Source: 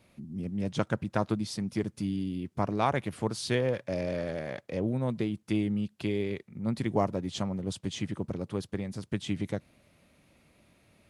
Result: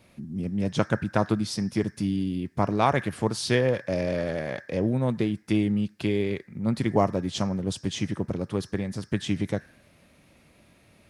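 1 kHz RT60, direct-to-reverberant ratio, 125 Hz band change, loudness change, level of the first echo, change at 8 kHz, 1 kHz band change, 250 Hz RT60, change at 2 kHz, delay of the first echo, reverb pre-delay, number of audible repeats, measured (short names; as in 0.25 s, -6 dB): 0.60 s, 10.5 dB, +5.0 dB, +5.0 dB, none, +5.5 dB, +5.0 dB, 0.70 s, +6.0 dB, none, 5 ms, none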